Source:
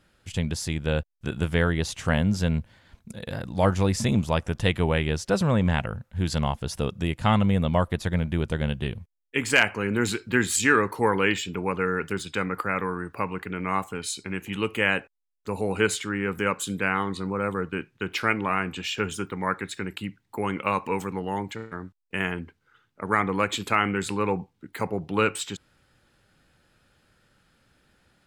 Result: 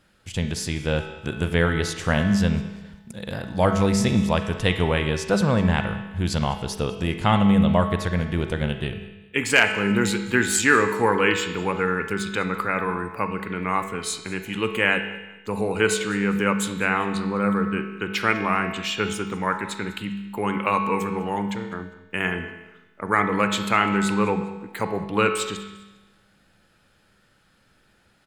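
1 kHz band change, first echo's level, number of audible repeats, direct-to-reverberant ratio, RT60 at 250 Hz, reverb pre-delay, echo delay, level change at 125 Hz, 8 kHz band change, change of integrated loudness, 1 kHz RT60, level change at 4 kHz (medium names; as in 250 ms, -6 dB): +3.5 dB, -19.5 dB, 2, 6.5 dB, 1.1 s, 34 ms, 201 ms, +1.5 dB, +2.5 dB, +3.0 dB, 1.1 s, +3.0 dB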